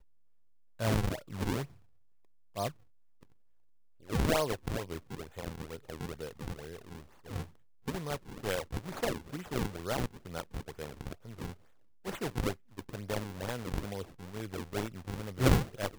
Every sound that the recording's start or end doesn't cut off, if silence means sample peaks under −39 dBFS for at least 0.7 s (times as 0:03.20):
0:00.80–0:01.65
0:02.56–0:02.69